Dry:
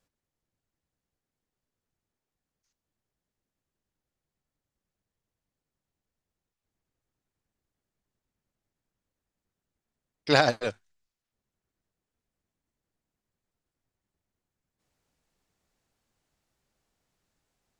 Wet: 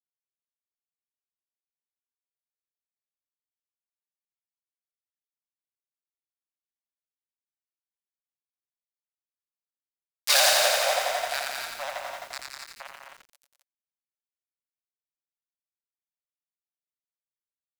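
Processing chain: bell 9000 Hz -6 dB 0.87 oct; echo with dull and thin repeats by turns 0.493 s, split 1100 Hz, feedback 73%, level -12 dB; gate with hold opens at -35 dBFS; fuzz box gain 36 dB, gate -36 dBFS; steep high-pass 540 Hz 96 dB/oct; loudspeakers at several distances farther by 37 m -10 dB, 69 m -8 dB, 90 m -7 dB; compressor 4:1, threshold -18 dBFS, peak gain reduction 5 dB; high shelf 2800 Hz +12 dB, from 10.53 s +2 dB; lo-fi delay 86 ms, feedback 80%, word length 7-bit, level -3.5 dB; gain -5 dB

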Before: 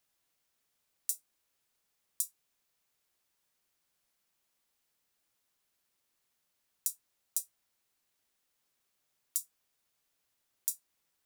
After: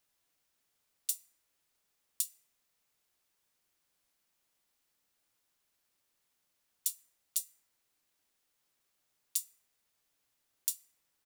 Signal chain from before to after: harmoniser -12 st -13 dB; FDN reverb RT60 2 s, high-frequency decay 0.25×, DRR 14 dB

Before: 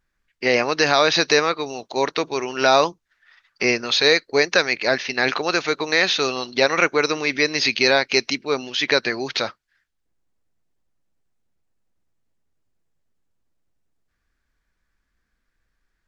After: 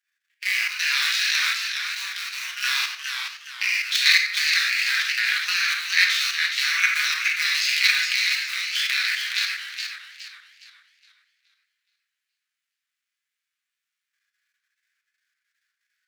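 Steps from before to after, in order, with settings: cycle switcher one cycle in 2, muted; steep high-pass 1600 Hz 36 dB/oct; reverb RT60 0.75 s, pre-delay 5 ms, DRR -3 dB; level quantiser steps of 9 dB; harmonic-percussive split harmonic +6 dB; warbling echo 0.418 s, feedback 36%, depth 121 cents, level -6 dB

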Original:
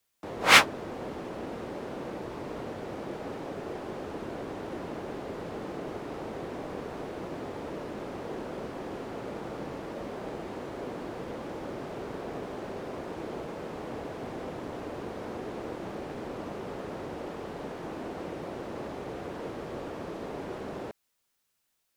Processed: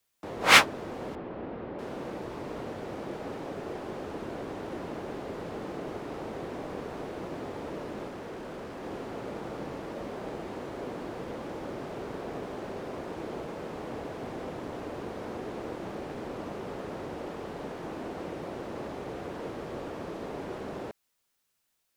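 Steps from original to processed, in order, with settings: 1.15–1.79 air absorption 380 m; 8.08–8.83 hard clip -37.5 dBFS, distortion -26 dB

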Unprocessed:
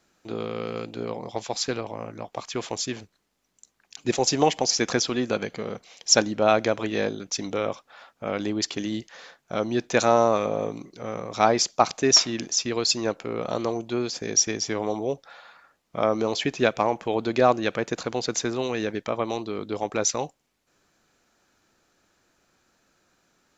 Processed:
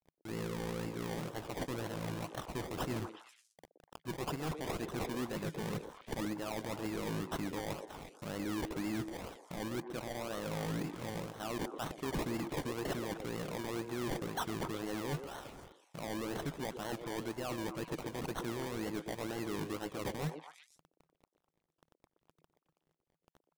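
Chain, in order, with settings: low shelf 140 Hz +11.5 dB; reverse; compressor 20:1, threshold -33 dBFS, peak gain reduction 22.5 dB; reverse; companded quantiser 4-bit; thirty-one-band EQ 160 Hz +11 dB, 315 Hz +5 dB, 2000 Hz +4 dB, 5000 Hz +8 dB; decimation with a swept rate 26×, swing 60% 2 Hz; on a send: delay with a stepping band-pass 0.121 s, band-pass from 410 Hz, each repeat 1.4 oct, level -6 dB; on the sum: hard clip -29.5 dBFS, distortion -11 dB; gain -2.5 dB

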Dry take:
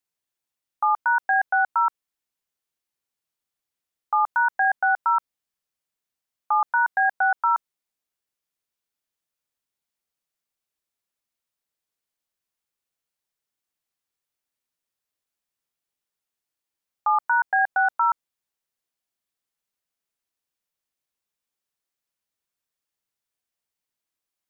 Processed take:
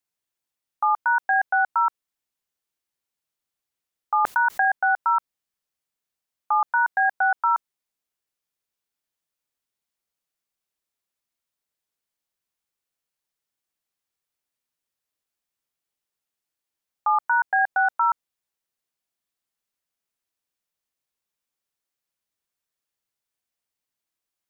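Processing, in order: 4.25–4.65 fast leveller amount 100%

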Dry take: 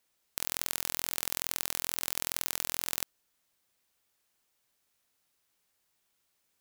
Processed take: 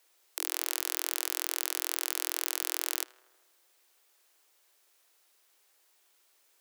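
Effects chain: steep high-pass 310 Hz 96 dB/oct; limiter -14 dBFS, peak gain reduction 9.5 dB; darkening echo 79 ms, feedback 72%, low-pass 2600 Hz, level -18.5 dB; gain +8.5 dB

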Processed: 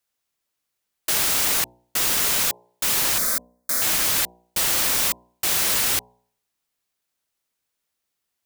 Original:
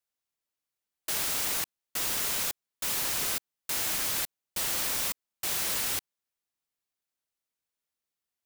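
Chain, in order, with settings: 3.18–3.82 fixed phaser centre 570 Hz, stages 8; de-hum 60.36 Hz, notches 17; gain +9 dB

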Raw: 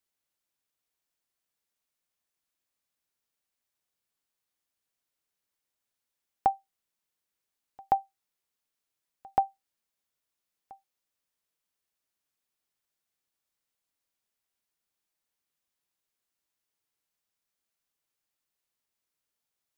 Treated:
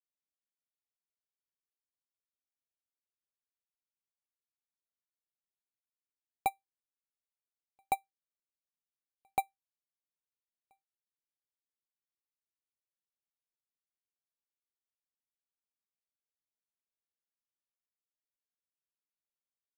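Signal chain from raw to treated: median filter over 41 samples; careless resampling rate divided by 4×, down filtered, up hold; upward expander 2.5:1, over -36 dBFS

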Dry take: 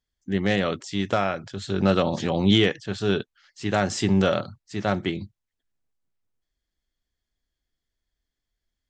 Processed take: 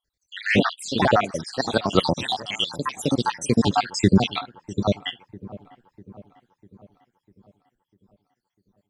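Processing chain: random spectral dropouts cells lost 78%; echoes that change speed 0.1 s, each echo +3 st, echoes 2; dark delay 0.648 s, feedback 52%, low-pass 1100 Hz, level -18 dB; gain +7 dB

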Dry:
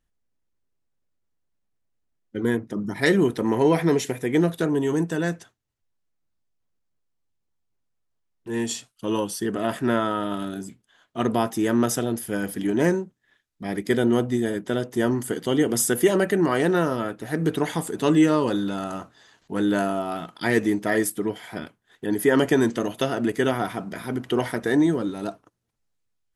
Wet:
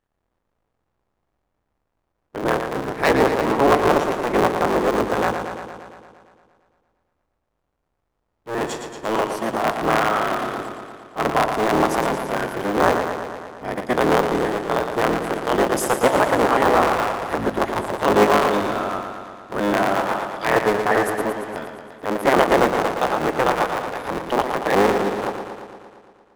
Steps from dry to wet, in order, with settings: cycle switcher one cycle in 3, inverted; transient shaper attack -3 dB, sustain -8 dB; bell 880 Hz +12 dB 2.9 oct; warbling echo 0.115 s, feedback 68%, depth 69 cents, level -7 dB; gain -5 dB

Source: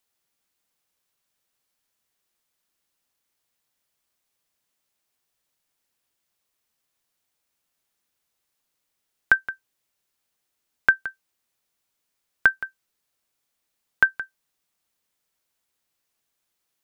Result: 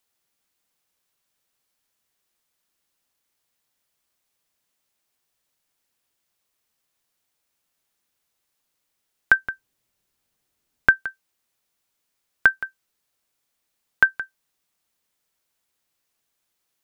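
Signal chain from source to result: 9.39–11 low shelf 340 Hz +9 dB; gain +1.5 dB

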